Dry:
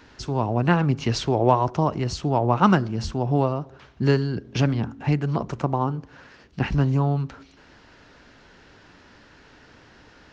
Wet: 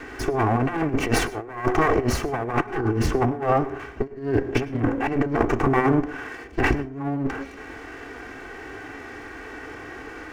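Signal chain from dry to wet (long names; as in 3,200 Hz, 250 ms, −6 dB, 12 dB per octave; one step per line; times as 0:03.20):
lower of the sound and its delayed copy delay 2.6 ms
healed spectral selection 0:02.74–0:03.02, 520–1,600 Hz both
graphic EQ with 10 bands 250 Hz +6 dB, 500 Hz +5 dB, 1,000 Hz +3 dB, 2,000 Hz +8 dB, 4,000 Hz −10 dB
harmonic and percussive parts rebalanced harmonic +7 dB
compressor whose output falls as the input rises −22 dBFS, ratio −0.5
convolution reverb RT60 0.30 s, pre-delay 94 ms, DRR 18.5 dB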